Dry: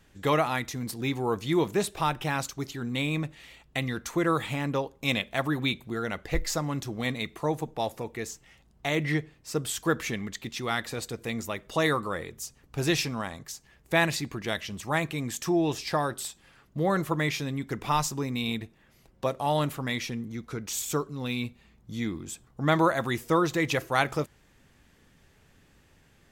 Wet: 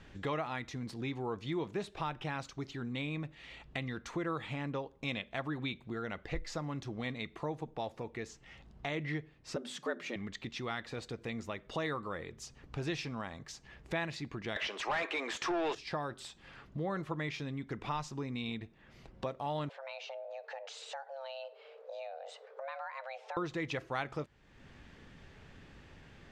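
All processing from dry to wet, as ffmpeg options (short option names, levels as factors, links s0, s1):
-filter_complex "[0:a]asettb=1/sr,asplit=3[s0][s1][s2];[s0]atrim=end=9.564[s3];[s1]atrim=start=9.56:end=10.16,asetpts=PTS-STARTPTS,afade=t=in:d=0.004:c=qsin,afade=t=out:st=0.596:d=0.004:c=qsin,afreqshift=110,bandreject=f=50:t=h:w=6,bandreject=f=100:t=h:w=6,bandreject=f=150:t=h:w=6,bandreject=f=200:t=h:w=6,bandreject=f=250:t=h:w=6,bandreject=f=300:t=h:w=6,bandreject=f=350:t=h:w=6,bandreject=f=400:t=h:w=6[s4];[s2]atrim=start=10.156[s5];[s3][s4]acrossfade=d=0.004:c1=hsin:c2=qsin[s6];[s6][s5]acrossfade=d=0.004:c1=qsin:c2=hsin,asettb=1/sr,asplit=3[s7][s8][s9];[s7]atrim=end=14.564[s10];[s8]atrim=start=14.56:end=15.75,asetpts=PTS-STARTPTS,afade=t=in:d=0.004:c=qsin,afade=t=out:st=1.186:d=0.004:c=qsin,highpass=f=380:w=0.5412,highpass=f=380:w=1.3066,asplit=2[s11][s12];[s12]highpass=f=720:p=1,volume=20,asoftclip=type=tanh:threshold=0.237[s13];[s11][s13]amix=inputs=2:normalize=0,lowpass=f=2900:p=1,volume=0.501[s14];[s9]atrim=start=15.746[s15];[s10][s14]acrossfade=d=0.004:c1=hsin:c2=qsin[s16];[s16][s15]acrossfade=d=0.004:c1=qsin:c2=hsin,asettb=1/sr,asplit=3[s17][s18][s19];[s17]atrim=end=19.694[s20];[s18]atrim=start=19.69:end=23.37,asetpts=PTS-STARTPTS,afade=t=in:d=0.004:c=qsin,afade=t=out:st=3.676:d=0.004:c=qsin,lowpass=4600,acompressor=threshold=0.00794:ratio=2.5:attack=3.2:release=140:knee=1:detection=peak,afreqshift=400[s21];[s19]atrim=start=23.366[s22];[s20][s21]acrossfade=d=0.004:c1=hsin:c2=qsin[s23];[s23][s22]acrossfade=d=0.004:c1=qsin:c2=hsin,lowpass=4200,acompressor=threshold=0.00224:ratio=2,volume=1.88"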